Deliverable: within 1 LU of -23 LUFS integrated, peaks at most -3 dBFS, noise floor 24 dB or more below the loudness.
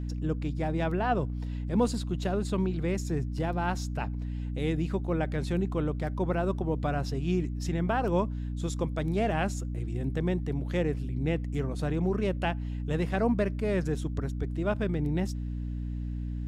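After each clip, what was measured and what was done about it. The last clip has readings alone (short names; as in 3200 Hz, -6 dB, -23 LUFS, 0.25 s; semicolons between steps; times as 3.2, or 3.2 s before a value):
hum 60 Hz; harmonics up to 300 Hz; hum level -31 dBFS; loudness -30.5 LUFS; peak -13.5 dBFS; loudness target -23.0 LUFS
-> notches 60/120/180/240/300 Hz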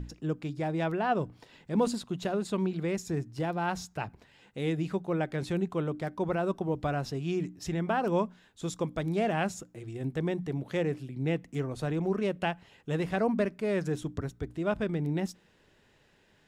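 hum none; loudness -32.0 LUFS; peak -16.0 dBFS; loudness target -23.0 LUFS
-> gain +9 dB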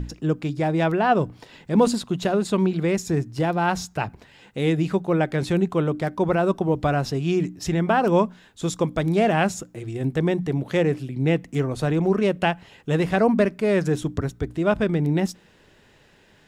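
loudness -23.0 LUFS; peak -7.0 dBFS; noise floor -56 dBFS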